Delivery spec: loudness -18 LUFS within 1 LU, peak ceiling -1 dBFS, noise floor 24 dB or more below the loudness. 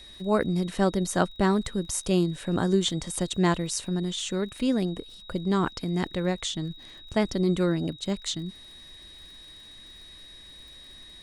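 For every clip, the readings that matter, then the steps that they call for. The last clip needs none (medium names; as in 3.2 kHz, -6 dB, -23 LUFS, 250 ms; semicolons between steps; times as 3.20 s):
tick rate 46 per s; steady tone 3.8 kHz; tone level -46 dBFS; loudness -27.5 LUFS; peak level -8.5 dBFS; loudness target -18.0 LUFS
-> de-click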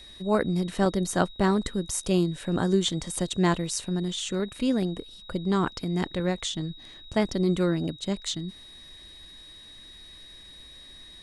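tick rate 0.089 per s; steady tone 3.8 kHz; tone level -46 dBFS
-> band-stop 3.8 kHz, Q 30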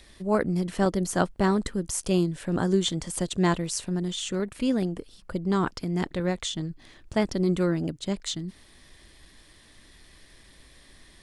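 steady tone not found; loudness -27.5 LUFS; peak level -8.5 dBFS; loudness target -18.0 LUFS
-> trim +9.5 dB; peak limiter -1 dBFS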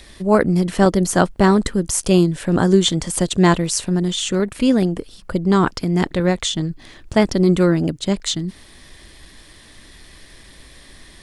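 loudness -18.0 LUFS; peak level -1.0 dBFS; noise floor -45 dBFS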